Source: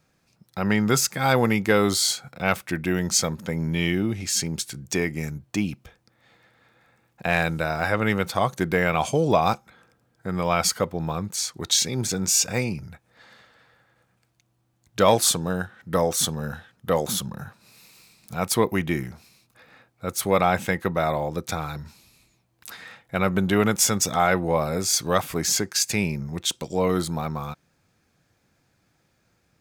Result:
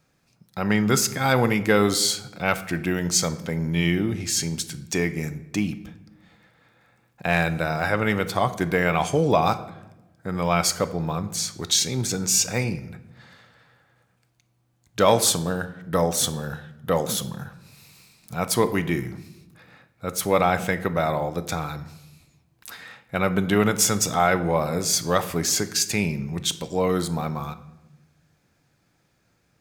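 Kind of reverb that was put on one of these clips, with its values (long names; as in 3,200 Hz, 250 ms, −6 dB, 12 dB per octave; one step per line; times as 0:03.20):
rectangular room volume 390 cubic metres, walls mixed, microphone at 0.33 metres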